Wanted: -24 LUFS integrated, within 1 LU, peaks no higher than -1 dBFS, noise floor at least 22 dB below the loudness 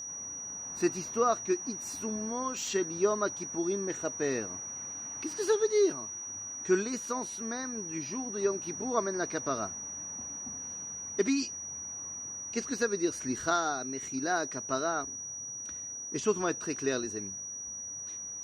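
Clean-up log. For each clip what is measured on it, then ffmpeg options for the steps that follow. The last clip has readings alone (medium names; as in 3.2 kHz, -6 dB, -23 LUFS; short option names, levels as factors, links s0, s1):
steady tone 5.8 kHz; tone level -38 dBFS; loudness -32.5 LUFS; peak level -14.0 dBFS; loudness target -24.0 LUFS
-> -af "bandreject=f=5800:w=30"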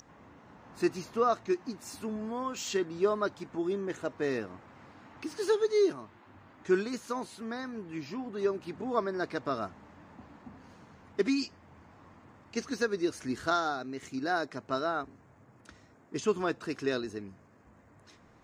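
steady tone not found; loudness -33.0 LUFS; peak level -15.0 dBFS; loudness target -24.0 LUFS
-> -af "volume=2.82"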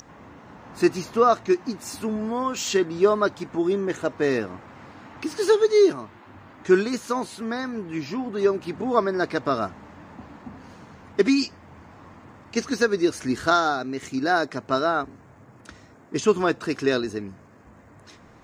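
loudness -24.0 LUFS; peak level -6.0 dBFS; noise floor -51 dBFS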